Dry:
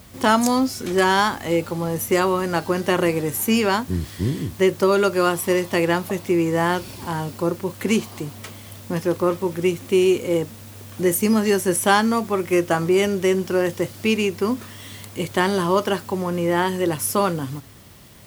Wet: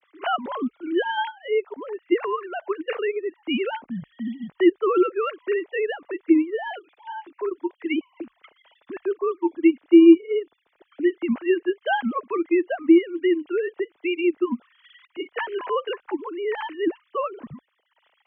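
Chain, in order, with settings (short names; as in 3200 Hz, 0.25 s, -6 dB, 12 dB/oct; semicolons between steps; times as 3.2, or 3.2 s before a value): sine-wave speech; transient shaper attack +1 dB, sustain -8 dB; frequency shift -40 Hz; gain -2.5 dB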